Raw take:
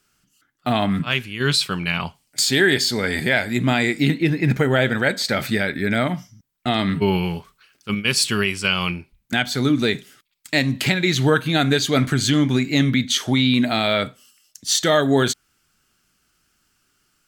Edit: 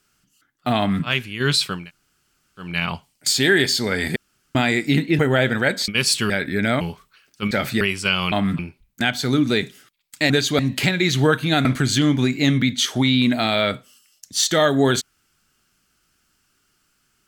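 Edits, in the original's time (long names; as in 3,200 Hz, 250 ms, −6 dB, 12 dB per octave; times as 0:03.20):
0:00.78–0:01.05: duplicate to 0:08.91
0:01.79: splice in room tone 0.88 s, crossfade 0.24 s
0:03.28–0:03.67: fill with room tone
0:04.31–0:04.59: remove
0:05.28–0:05.58: swap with 0:07.98–0:08.40
0:06.09–0:07.28: remove
0:11.68–0:11.97: move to 0:10.62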